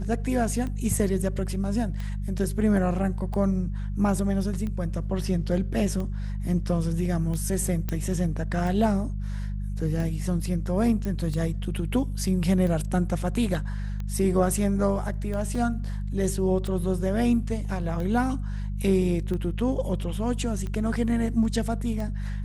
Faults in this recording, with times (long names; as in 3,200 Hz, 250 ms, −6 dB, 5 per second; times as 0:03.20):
mains hum 50 Hz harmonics 4 −30 dBFS
scratch tick 45 rpm −22 dBFS
0:07.89: click −15 dBFS
0:11.05: click −20 dBFS
0:15.55: drop-out 3.8 ms